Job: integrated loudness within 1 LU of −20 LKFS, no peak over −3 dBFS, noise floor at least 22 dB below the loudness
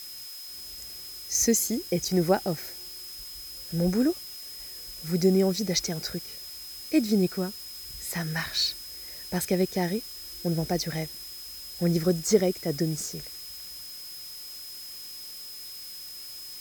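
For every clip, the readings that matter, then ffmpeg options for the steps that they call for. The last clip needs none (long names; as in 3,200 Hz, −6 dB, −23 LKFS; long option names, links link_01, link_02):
interfering tone 5,100 Hz; level of the tone −41 dBFS; background noise floor −41 dBFS; target noise floor −51 dBFS; integrated loudness −29.0 LKFS; sample peak −8.0 dBFS; target loudness −20.0 LKFS
→ -af "bandreject=frequency=5100:width=30"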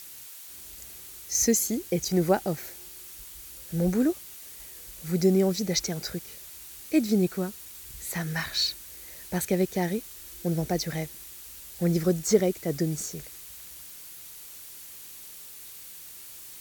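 interfering tone none found; background noise floor −45 dBFS; target noise floor −49 dBFS
→ -af "afftdn=noise_reduction=6:noise_floor=-45"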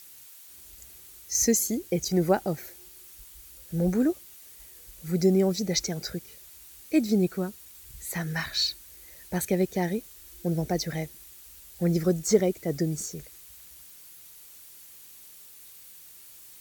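background noise floor −50 dBFS; integrated loudness −27.5 LKFS; sample peak −8.0 dBFS; target loudness −20.0 LKFS
→ -af "volume=7.5dB,alimiter=limit=-3dB:level=0:latency=1"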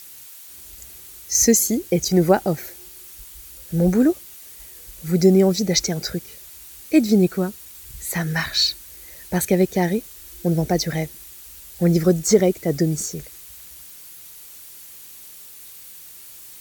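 integrated loudness −20.0 LKFS; sample peak −3.0 dBFS; background noise floor −42 dBFS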